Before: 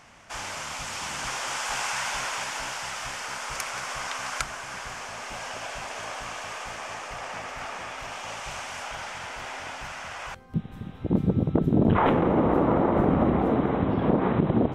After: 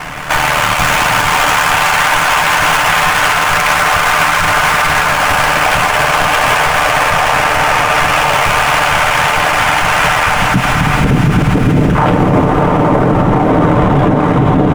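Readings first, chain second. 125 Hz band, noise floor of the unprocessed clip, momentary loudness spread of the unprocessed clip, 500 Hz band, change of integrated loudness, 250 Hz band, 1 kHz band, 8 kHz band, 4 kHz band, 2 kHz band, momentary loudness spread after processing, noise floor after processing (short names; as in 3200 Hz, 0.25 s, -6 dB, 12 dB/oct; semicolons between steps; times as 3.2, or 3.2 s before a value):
+15.5 dB, -42 dBFS, 13 LU, +13.5 dB, +17.5 dB, +11.5 dB, +20.5 dB, +16.0 dB, +20.0 dB, +23.5 dB, 1 LU, -13 dBFS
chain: median filter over 9 samples; ring modulator 38 Hz; pre-echo 0.136 s -23 dB; compressor, threshold -31 dBFS, peak gain reduction 13.5 dB; bell 350 Hz -5 dB 1.7 oct; comb 6.7 ms, depth 41%; on a send: diffused feedback echo 0.614 s, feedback 60%, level -5 dB; on the sum: maximiser +34 dB; gain -1 dB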